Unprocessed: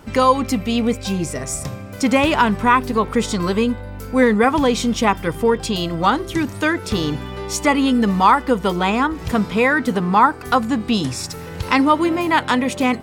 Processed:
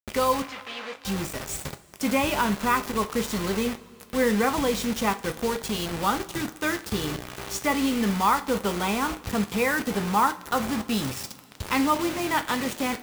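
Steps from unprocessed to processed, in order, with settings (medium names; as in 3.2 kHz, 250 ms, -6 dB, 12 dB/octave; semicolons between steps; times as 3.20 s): bit crusher 4-bit; 0.42–1.05 s: band-pass 790–3300 Hz; two-slope reverb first 0.3 s, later 3.2 s, from -21 dB, DRR 7.5 dB; trim -9 dB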